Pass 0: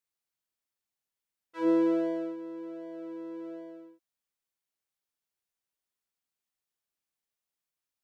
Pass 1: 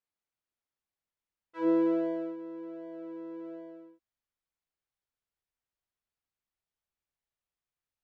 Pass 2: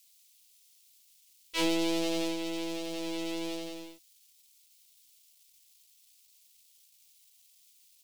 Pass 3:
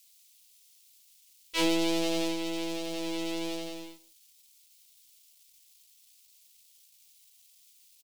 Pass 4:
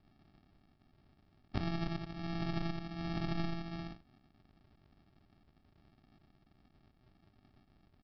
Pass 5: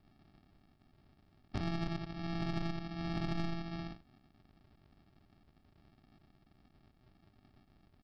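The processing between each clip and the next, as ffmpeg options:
-af "lowpass=f=2.2k:p=1,asubboost=boost=2.5:cutoff=130"
-af "aeval=exprs='if(lt(val(0),0),0.251*val(0),val(0))':c=same,acompressor=threshold=-35dB:ratio=5,aexciter=amount=11:drive=7.6:freq=2.4k,volume=9dB"
-af "aecho=1:1:147:0.0841,volume=2dB"
-af "afftfilt=real='re*pow(10,11/40*sin(2*PI*(1.4*log(max(b,1)*sr/1024/100)/log(2)-(1.4)*(pts-256)/sr)))':imag='im*pow(10,11/40*sin(2*PI*(1.4*log(max(b,1)*sr/1024/100)/log(2)-(1.4)*(pts-256)/sr)))':win_size=1024:overlap=0.75,acompressor=threshold=-34dB:ratio=16,aresample=11025,acrusher=samples=22:mix=1:aa=0.000001,aresample=44100,volume=2dB"
-af "asoftclip=type=tanh:threshold=-26.5dB,volume=1dB"

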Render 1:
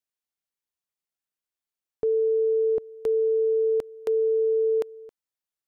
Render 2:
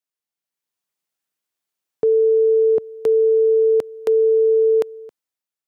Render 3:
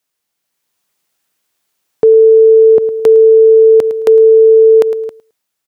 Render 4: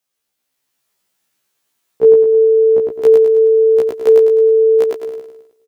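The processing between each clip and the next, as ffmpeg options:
-af "highpass=110,dynaudnorm=f=110:g=11:m=7.5dB"
-af "aecho=1:1:108|216:0.112|0.018,alimiter=level_in=16.5dB:limit=-1dB:release=50:level=0:latency=1,volume=-1dB"
-af "aecho=1:1:105|210|315|420|525|630:0.708|0.319|0.143|0.0645|0.029|0.0131,afftfilt=real='re*1.73*eq(mod(b,3),0)':imag='im*1.73*eq(mod(b,3),0)':win_size=2048:overlap=0.75,volume=-1dB"

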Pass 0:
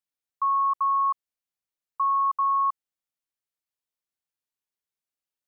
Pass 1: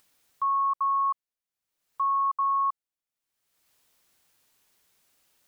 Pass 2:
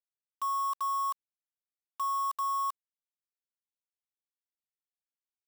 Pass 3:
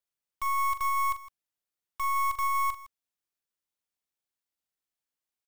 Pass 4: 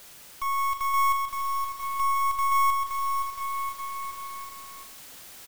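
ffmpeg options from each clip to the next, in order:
-af "acompressor=mode=upward:threshold=-45dB:ratio=2.5,volume=-2dB"
-af "acrusher=bits=5:mix=0:aa=0.000001,volume=-6dB"
-filter_complex "[0:a]aeval=exprs='clip(val(0),-1,0.00944)':c=same,asplit=2[a][b];[b]aecho=0:1:41|160:0.299|0.15[c];[a][c]amix=inputs=2:normalize=0,volume=4dB"
-af "aeval=exprs='val(0)+0.5*0.0112*sgn(val(0))':c=same,aecho=1:1:520|988|1409|1788|2129:0.631|0.398|0.251|0.158|0.1"

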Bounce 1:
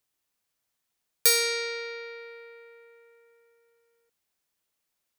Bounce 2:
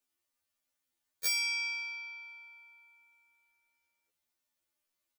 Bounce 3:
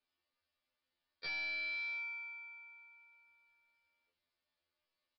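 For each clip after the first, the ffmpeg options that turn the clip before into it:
-af "aecho=1:1:3.4:0.44,alimiter=limit=-13dB:level=0:latency=1:release=401,afftfilt=real='re*2*eq(mod(b,4),0)':imag='im*2*eq(mod(b,4),0)':win_size=2048:overlap=0.75,volume=-3dB"
-filter_complex "[0:a]asplit=2[a][b];[b]adelay=25,volume=-4dB[c];[a][c]amix=inputs=2:normalize=0,aresample=11025,asoftclip=type=hard:threshold=-38.5dB,aresample=44100"

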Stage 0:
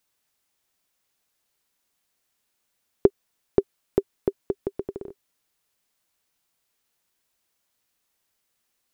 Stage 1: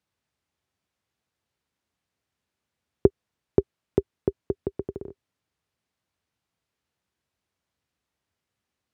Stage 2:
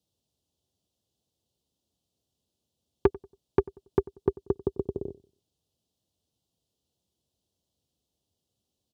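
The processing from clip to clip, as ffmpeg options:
-af "highpass=f=66:w=0.5412,highpass=f=66:w=1.3066,aemphasis=mode=reproduction:type=bsi,volume=-3dB"
-filter_complex "[0:a]acrossover=split=720[a][b];[a]asoftclip=type=tanh:threshold=-16dB[c];[b]asuperstop=centerf=1700:order=8:qfactor=0.83[d];[c][d]amix=inputs=2:normalize=0,asplit=2[e][f];[f]adelay=93,lowpass=f=1.1k:p=1,volume=-20.5dB,asplit=2[g][h];[h]adelay=93,lowpass=f=1.1k:p=1,volume=0.35,asplit=2[i][j];[j]adelay=93,lowpass=f=1.1k:p=1,volume=0.35[k];[e][g][i][k]amix=inputs=4:normalize=0,volume=3dB"

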